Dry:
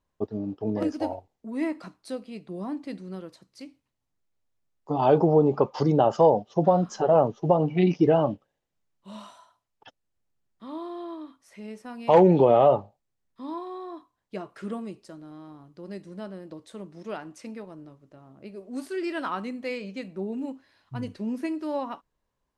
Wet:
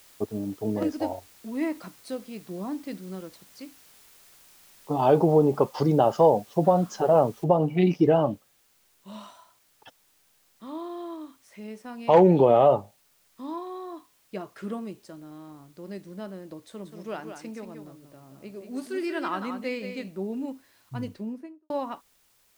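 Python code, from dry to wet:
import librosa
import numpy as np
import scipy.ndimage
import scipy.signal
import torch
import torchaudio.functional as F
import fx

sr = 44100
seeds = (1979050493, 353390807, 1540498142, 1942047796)

y = fx.noise_floor_step(x, sr, seeds[0], at_s=7.44, before_db=-55, after_db=-65, tilt_db=0.0)
y = fx.echo_single(y, sr, ms=182, db=-7.5, at=(16.84, 20.08), fade=0.02)
y = fx.studio_fade_out(y, sr, start_s=20.99, length_s=0.71)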